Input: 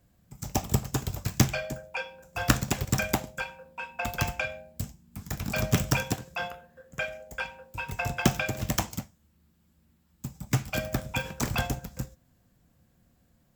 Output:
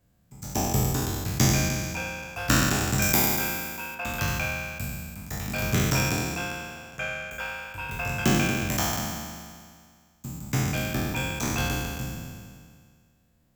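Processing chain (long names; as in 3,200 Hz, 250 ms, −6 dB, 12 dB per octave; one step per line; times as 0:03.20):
peak hold with a decay on every bin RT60 1.99 s
0:03.02–0:03.95: high-shelf EQ 6,200 Hz +11 dB
level −4 dB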